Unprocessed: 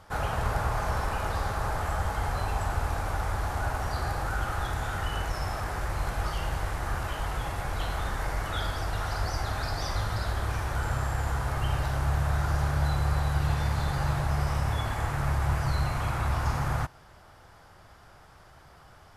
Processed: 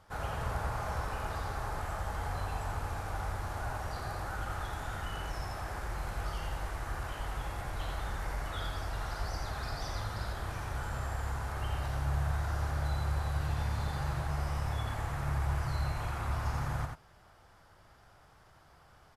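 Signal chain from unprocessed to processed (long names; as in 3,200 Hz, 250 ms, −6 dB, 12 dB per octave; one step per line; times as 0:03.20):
on a send: single-tap delay 86 ms −4.5 dB
on the sum: level −8 dB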